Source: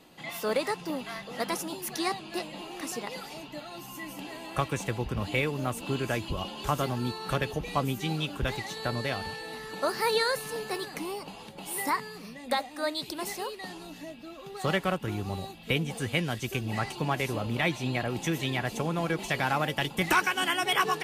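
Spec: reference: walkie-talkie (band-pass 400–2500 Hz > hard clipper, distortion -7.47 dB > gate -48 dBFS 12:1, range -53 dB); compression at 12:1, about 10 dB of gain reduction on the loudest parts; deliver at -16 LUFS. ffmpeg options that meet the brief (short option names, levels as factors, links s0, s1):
-af "acompressor=threshold=0.0316:ratio=12,highpass=400,lowpass=2500,asoftclip=type=hard:threshold=0.0133,agate=range=0.00224:threshold=0.00398:ratio=12,volume=21.1"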